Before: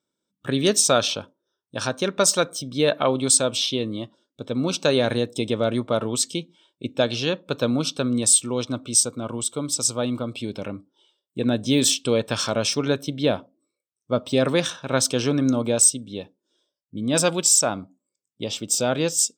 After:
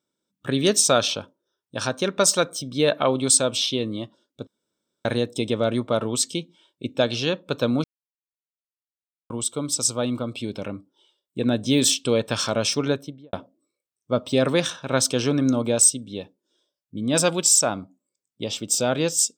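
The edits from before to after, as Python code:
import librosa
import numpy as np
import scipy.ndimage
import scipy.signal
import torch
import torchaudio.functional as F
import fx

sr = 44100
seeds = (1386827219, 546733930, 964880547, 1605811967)

y = fx.studio_fade_out(x, sr, start_s=12.82, length_s=0.51)
y = fx.edit(y, sr, fx.room_tone_fill(start_s=4.47, length_s=0.58),
    fx.silence(start_s=7.84, length_s=1.46), tone=tone)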